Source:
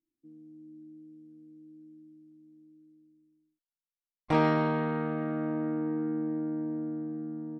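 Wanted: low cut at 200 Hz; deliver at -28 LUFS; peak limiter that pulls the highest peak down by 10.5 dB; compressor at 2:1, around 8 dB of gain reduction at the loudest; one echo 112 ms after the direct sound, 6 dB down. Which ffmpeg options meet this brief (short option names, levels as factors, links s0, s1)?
-af "highpass=200,acompressor=threshold=0.0158:ratio=2,alimiter=level_in=2.37:limit=0.0631:level=0:latency=1,volume=0.422,aecho=1:1:112:0.501,volume=3.35"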